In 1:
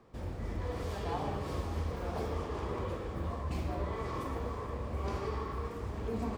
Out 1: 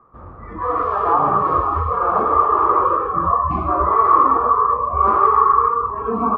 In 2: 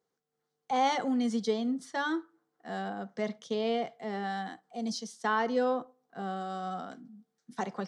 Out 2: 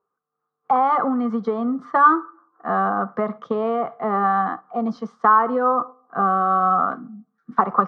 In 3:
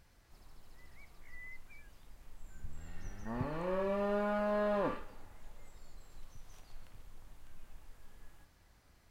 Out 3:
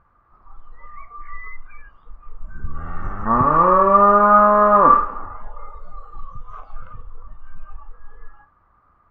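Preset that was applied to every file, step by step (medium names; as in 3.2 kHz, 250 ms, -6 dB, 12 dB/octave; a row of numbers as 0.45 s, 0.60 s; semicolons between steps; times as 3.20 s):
spectral noise reduction 15 dB; compression 6:1, threshold -33 dBFS; resonant low-pass 1.2 kHz, resonance Q 12; peak normalisation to -1.5 dBFS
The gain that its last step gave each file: +15.0 dB, +12.5 dB, +17.5 dB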